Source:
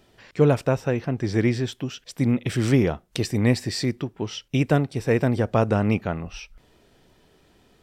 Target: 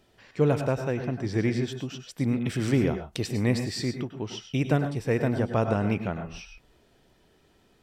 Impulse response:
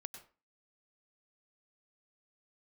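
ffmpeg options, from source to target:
-filter_complex "[1:a]atrim=start_sample=2205,afade=t=out:st=0.19:d=0.01,atrim=end_sample=8820,asetrate=42777,aresample=44100[s0];[0:a][s0]afir=irnorm=-1:irlink=0"

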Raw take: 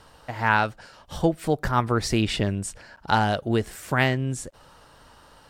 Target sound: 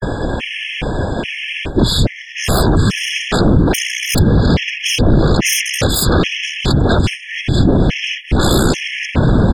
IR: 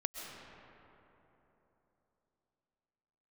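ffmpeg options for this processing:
-filter_complex "[0:a]areverse,acrossover=split=450|3000[s0][s1][s2];[s1]acompressor=threshold=0.0141:ratio=4[s3];[s0][s3][s2]amix=inputs=3:normalize=0,asplit=2[s4][s5];[1:a]atrim=start_sample=2205,asetrate=33957,aresample=44100[s6];[s5][s6]afir=irnorm=-1:irlink=0,volume=0.501[s7];[s4][s7]amix=inputs=2:normalize=0,acompressor=threshold=0.0316:ratio=2.5,highshelf=f=6200:t=q:w=3:g=-8.5,asetrate=25442,aresample=44100,aeval=exprs='0.141*sin(PI/2*7.08*val(0)/0.141)':c=same,equalizer=f=920:t=o:w=2.1:g=-10,afftfilt=real='hypot(re,im)*cos(2*PI*random(0))':imag='hypot(re,im)*sin(2*PI*random(1))':win_size=512:overlap=0.75,bandreject=f=278.3:t=h:w=4,bandreject=f=556.6:t=h:w=4,bandreject=f=834.9:t=h:w=4,bandreject=f=1113.2:t=h:w=4,bandreject=f=1391.5:t=h:w=4,bandreject=f=1669.8:t=h:w=4,bandreject=f=1948.1:t=h:w=4,bandreject=f=2226.4:t=h:w=4,alimiter=level_in=11.2:limit=0.891:release=50:level=0:latency=1,afftfilt=real='re*gt(sin(2*PI*1.2*pts/sr)*(1-2*mod(floor(b*sr/1024/1700),2)),0)':imag='im*gt(sin(2*PI*1.2*pts/sr)*(1-2*mod(floor(b*sr/1024/1700),2)),0)':win_size=1024:overlap=0.75,volume=0.891"

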